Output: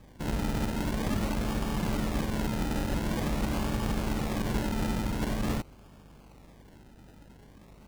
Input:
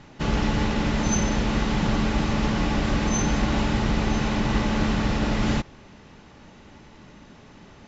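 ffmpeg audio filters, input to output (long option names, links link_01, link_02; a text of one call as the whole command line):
ffmpeg -i in.wav -af "acrusher=samples=31:mix=1:aa=0.000001:lfo=1:lforange=18.6:lforate=0.46,aeval=exprs='val(0)+0.00398*(sin(2*PI*50*n/s)+sin(2*PI*2*50*n/s)/2+sin(2*PI*3*50*n/s)/3+sin(2*PI*4*50*n/s)/4+sin(2*PI*5*50*n/s)/5)':channel_layout=same,volume=-7dB" out.wav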